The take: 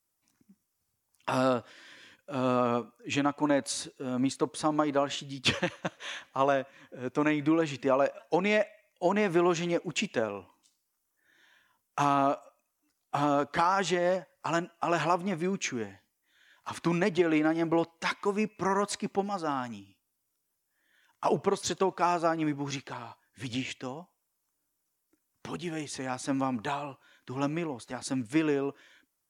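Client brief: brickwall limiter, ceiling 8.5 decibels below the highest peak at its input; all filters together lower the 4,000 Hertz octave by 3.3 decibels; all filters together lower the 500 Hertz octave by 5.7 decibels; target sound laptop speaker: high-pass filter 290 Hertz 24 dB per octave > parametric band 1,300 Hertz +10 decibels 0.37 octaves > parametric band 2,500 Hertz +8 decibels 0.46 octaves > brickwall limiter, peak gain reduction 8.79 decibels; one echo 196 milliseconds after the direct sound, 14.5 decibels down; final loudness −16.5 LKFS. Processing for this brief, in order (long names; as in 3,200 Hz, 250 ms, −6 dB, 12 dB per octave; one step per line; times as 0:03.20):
parametric band 500 Hz −7.5 dB
parametric band 4,000 Hz −8 dB
brickwall limiter −22.5 dBFS
high-pass filter 290 Hz 24 dB per octave
parametric band 1,300 Hz +10 dB 0.37 octaves
parametric band 2,500 Hz +8 dB 0.46 octaves
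single-tap delay 196 ms −14.5 dB
level +20 dB
brickwall limiter −5 dBFS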